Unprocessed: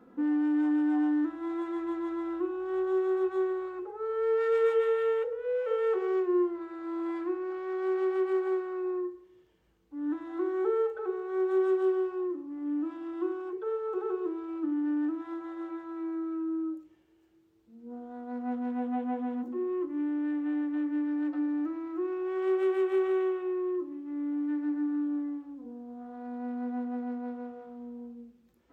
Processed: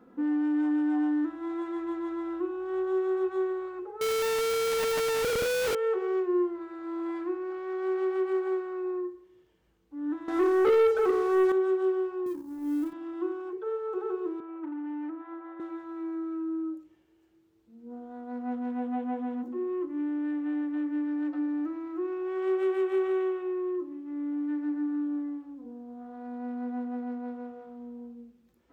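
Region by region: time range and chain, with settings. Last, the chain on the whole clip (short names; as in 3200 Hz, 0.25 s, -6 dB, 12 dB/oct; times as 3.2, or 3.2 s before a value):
4.01–5.75 CVSD 32 kbps + high shelf 2200 Hz +7.5 dB + Schmitt trigger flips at -42 dBFS
10.28–11.52 comb 4.4 ms, depth 31% + sample leveller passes 3
12.26–12.93 G.711 law mismatch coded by A + tone controls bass +10 dB, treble +10 dB
14.4–15.6 overloaded stage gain 27 dB + three-band isolator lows -18 dB, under 310 Hz, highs -24 dB, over 2600 Hz
whole clip: dry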